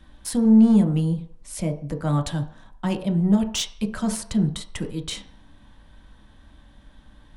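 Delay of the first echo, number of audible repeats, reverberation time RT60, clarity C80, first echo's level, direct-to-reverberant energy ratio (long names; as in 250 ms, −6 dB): no echo audible, no echo audible, 0.50 s, 15.0 dB, no echo audible, 3.5 dB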